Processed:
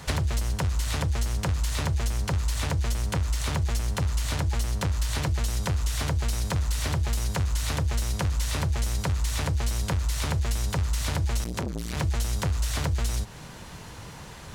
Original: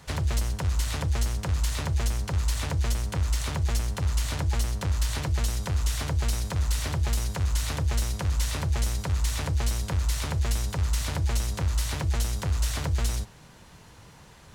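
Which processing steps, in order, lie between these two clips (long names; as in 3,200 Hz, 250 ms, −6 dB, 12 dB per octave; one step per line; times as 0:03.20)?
downward compressor 6 to 1, threshold −32 dBFS, peak gain reduction 10.5 dB
0:11.44–0:11.97: saturating transformer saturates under 480 Hz
level +8.5 dB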